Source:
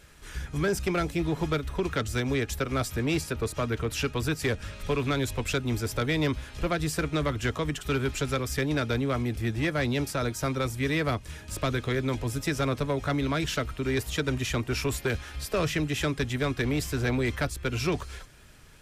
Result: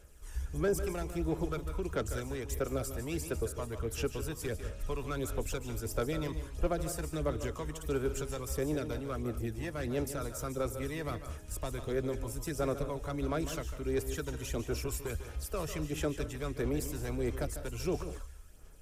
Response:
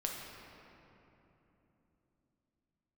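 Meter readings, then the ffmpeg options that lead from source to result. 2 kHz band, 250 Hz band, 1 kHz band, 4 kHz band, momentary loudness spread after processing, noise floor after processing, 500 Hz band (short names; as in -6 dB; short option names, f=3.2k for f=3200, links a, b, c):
-13.0 dB, -8.0 dB, -8.5 dB, -12.5 dB, 5 LU, -46 dBFS, -5.0 dB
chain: -filter_complex "[0:a]equalizer=f=125:t=o:w=1:g=-11,equalizer=f=250:t=o:w=1:g=-7,equalizer=f=1k:t=o:w=1:g=-6,equalizer=f=2k:t=o:w=1:g=-10,equalizer=f=4k:t=o:w=1:g=-11,aphaser=in_gain=1:out_gain=1:delay=1.1:decay=0.46:speed=1.5:type=sinusoidal,asplit=2[a][b];[1:a]atrim=start_sample=2205,atrim=end_sample=4410,adelay=148[c];[b][c]afir=irnorm=-1:irlink=0,volume=-9.5dB[d];[a][d]amix=inputs=2:normalize=0,volume=-3dB"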